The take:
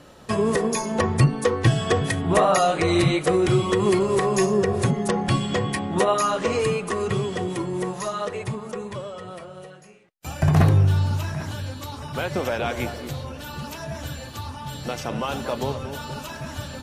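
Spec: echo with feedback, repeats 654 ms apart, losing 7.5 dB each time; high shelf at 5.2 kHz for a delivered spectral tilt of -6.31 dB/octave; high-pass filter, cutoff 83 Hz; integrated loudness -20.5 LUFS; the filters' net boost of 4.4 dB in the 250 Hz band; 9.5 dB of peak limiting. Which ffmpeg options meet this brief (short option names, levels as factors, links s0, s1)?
-af "highpass=83,equalizer=f=250:t=o:g=7,highshelf=f=5200:g=-5.5,alimiter=limit=0.2:level=0:latency=1,aecho=1:1:654|1308|1962|2616|3270:0.422|0.177|0.0744|0.0312|0.0131,volume=1.5"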